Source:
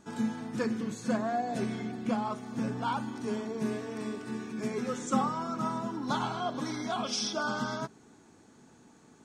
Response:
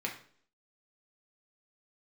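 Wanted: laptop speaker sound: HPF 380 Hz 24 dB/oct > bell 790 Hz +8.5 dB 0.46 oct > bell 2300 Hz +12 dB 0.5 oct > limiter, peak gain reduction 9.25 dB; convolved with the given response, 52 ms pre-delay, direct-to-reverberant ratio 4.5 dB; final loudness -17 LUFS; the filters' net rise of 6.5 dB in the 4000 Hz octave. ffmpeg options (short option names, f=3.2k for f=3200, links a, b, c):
-filter_complex "[0:a]equalizer=f=4k:t=o:g=6.5,asplit=2[a][b];[1:a]atrim=start_sample=2205,adelay=52[c];[b][c]afir=irnorm=-1:irlink=0,volume=-8.5dB[d];[a][d]amix=inputs=2:normalize=0,highpass=f=380:w=0.5412,highpass=f=380:w=1.3066,equalizer=f=790:t=o:w=0.46:g=8.5,equalizer=f=2.3k:t=o:w=0.5:g=12,volume=16.5dB,alimiter=limit=-7.5dB:level=0:latency=1"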